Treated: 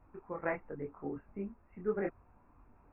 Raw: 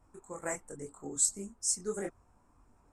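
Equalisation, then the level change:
linear-phase brick-wall low-pass 2,800 Hz
+2.5 dB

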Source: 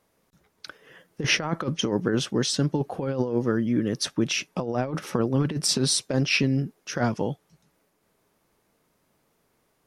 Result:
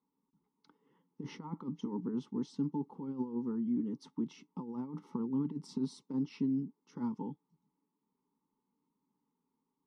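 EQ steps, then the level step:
formant filter u
low-shelf EQ 210 Hz +11.5 dB
phaser with its sweep stopped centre 480 Hz, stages 8
0.0 dB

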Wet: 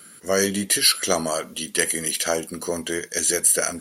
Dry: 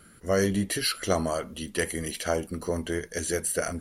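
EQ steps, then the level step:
high-pass filter 180 Hz 12 dB per octave
high-shelf EQ 2,500 Hz +10.5 dB
+2.5 dB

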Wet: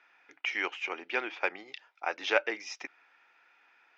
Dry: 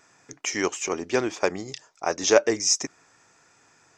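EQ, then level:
high-frequency loss of the air 110 metres
loudspeaker in its box 420–2,700 Hz, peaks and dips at 430 Hz −6 dB, 630 Hz −7 dB, 1,100 Hz −9 dB, 1,800 Hz −5 dB
spectral tilt +4.5 dB per octave
0.0 dB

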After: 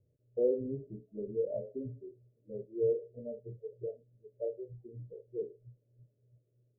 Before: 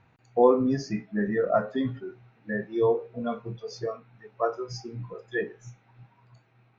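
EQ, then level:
Chebyshev low-pass with heavy ripple 610 Hz, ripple 6 dB
parametric band 190 Hz −14.5 dB 0.77 octaves
−3.5 dB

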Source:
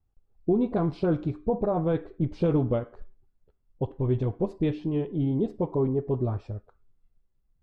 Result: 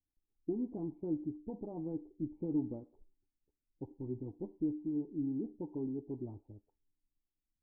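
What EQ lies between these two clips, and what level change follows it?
formant resonators in series u
−5.5 dB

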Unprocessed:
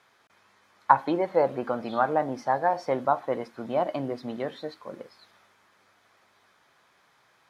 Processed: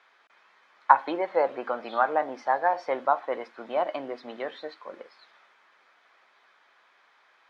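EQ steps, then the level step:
band-pass filter 290–2,600 Hz
spectral tilt +3 dB per octave
+1.5 dB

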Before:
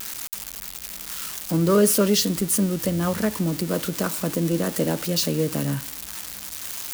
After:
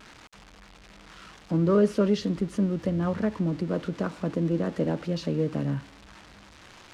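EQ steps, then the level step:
head-to-tape spacing loss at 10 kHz 31 dB
−2.0 dB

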